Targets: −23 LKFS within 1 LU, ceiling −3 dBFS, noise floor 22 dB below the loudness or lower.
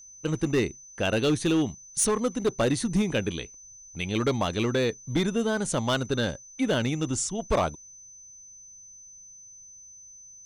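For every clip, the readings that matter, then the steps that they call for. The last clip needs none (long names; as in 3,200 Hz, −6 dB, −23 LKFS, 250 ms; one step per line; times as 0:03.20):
share of clipped samples 1.3%; peaks flattened at −18.0 dBFS; interfering tone 6,100 Hz; level of the tone −46 dBFS; integrated loudness −27.0 LKFS; sample peak −18.0 dBFS; target loudness −23.0 LKFS
→ clipped peaks rebuilt −18 dBFS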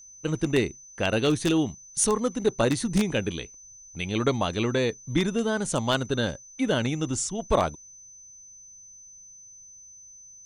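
share of clipped samples 0.0%; interfering tone 6,100 Hz; level of the tone −46 dBFS
→ notch filter 6,100 Hz, Q 30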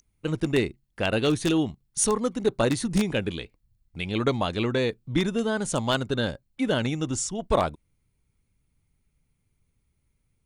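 interfering tone none found; integrated loudness −26.5 LKFS; sample peak −9.0 dBFS; target loudness −23.0 LKFS
→ level +3.5 dB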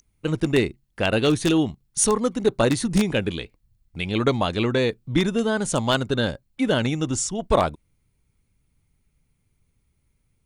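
integrated loudness −23.0 LKFS; sample peak −5.5 dBFS; background noise floor −70 dBFS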